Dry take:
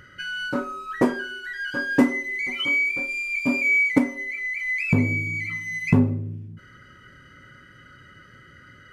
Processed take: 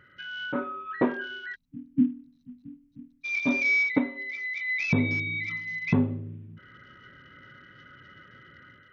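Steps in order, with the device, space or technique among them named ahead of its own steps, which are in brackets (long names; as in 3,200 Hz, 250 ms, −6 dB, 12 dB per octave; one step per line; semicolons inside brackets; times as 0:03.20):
0:01.79–0:03.36: Chebyshev low-pass filter 7,200 Hz, order 3
0:01.55–0:03.25: time-frequency box erased 300–3,800 Hz
Bluetooth headset (high-pass filter 120 Hz 6 dB per octave; automatic gain control gain up to 6.5 dB; downsampling to 8,000 Hz; level −8 dB; SBC 64 kbit/s 48,000 Hz)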